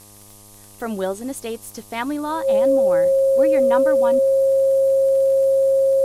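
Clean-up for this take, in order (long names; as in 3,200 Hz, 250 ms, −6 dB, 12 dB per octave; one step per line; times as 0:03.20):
click removal
hum removal 102.1 Hz, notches 12
notch filter 540 Hz, Q 30
noise reduction from a noise print 20 dB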